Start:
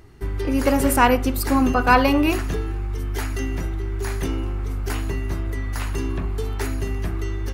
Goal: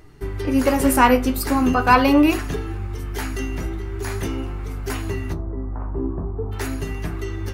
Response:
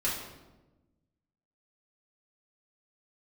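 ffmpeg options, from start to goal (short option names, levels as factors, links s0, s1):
-filter_complex "[0:a]asplit=3[s0][s1][s2];[s0]afade=t=out:st=5.32:d=0.02[s3];[s1]lowpass=f=1000:w=0.5412,lowpass=f=1000:w=1.3066,afade=t=in:st=5.32:d=0.02,afade=t=out:st=6.51:d=0.02[s4];[s2]afade=t=in:st=6.51:d=0.02[s5];[s3][s4][s5]amix=inputs=3:normalize=0,flanger=delay=6.5:depth=9.5:regen=49:speed=0.43:shape=sinusoidal,asplit=2[s6][s7];[1:a]atrim=start_sample=2205,afade=t=out:st=0.15:d=0.01,atrim=end_sample=7056[s8];[s7][s8]afir=irnorm=-1:irlink=0,volume=0.0473[s9];[s6][s9]amix=inputs=2:normalize=0,volume=1.68"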